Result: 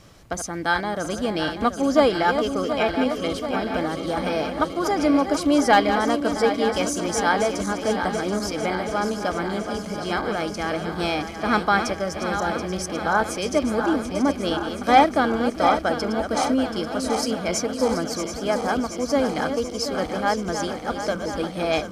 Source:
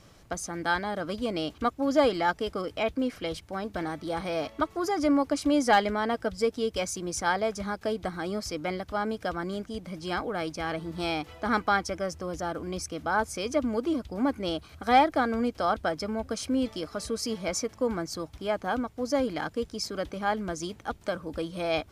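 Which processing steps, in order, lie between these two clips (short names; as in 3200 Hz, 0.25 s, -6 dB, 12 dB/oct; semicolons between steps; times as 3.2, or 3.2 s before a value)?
regenerating reverse delay 0.365 s, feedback 81%, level -8.5 dB; gain +5 dB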